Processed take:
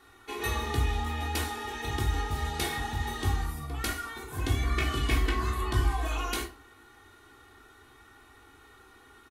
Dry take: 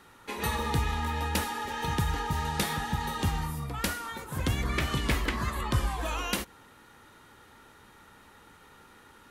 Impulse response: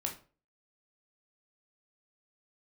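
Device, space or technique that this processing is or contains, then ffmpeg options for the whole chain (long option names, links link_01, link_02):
microphone above a desk: -filter_complex "[0:a]aecho=1:1:2.7:0.85[link_01];[1:a]atrim=start_sample=2205[link_02];[link_01][link_02]afir=irnorm=-1:irlink=0,volume=-4.5dB"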